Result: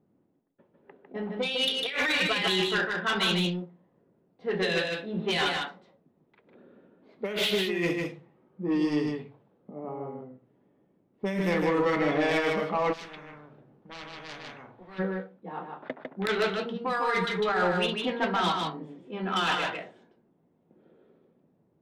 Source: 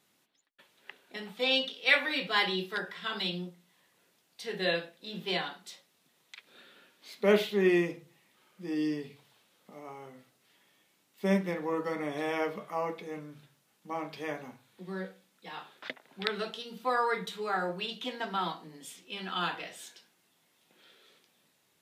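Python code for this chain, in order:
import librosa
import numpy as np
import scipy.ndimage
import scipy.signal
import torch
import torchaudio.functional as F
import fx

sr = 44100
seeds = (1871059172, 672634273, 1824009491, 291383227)

y = fx.env_lowpass(x, sr, base_hz=390.0, full_db=-25.5)
y = fx.dynamic_eq(y, sr, hz=2600.0, q=0.85, threshold_db=-42.0, ratio=4.0, max_db=5)
y = fx.over_compress(y, sr, threshold_db=-32.0, ratio=-1.0)
y = 10.0 ** (-27.5 / 20.0) * np.tanh(y / 10.0 ** (-27.5 / 20.0))
y = y + 10.0 ** (-4.0 / 20.0) * np.pad(y, (int(152 * sr / 1000.0), 0))[:len(y)]
y = fx.spectral_comp(y, sr, ratio=4.0, at=(12.92, 14.98), fade=0.02)
y = y * librosa.db_to_amplitude(7.0)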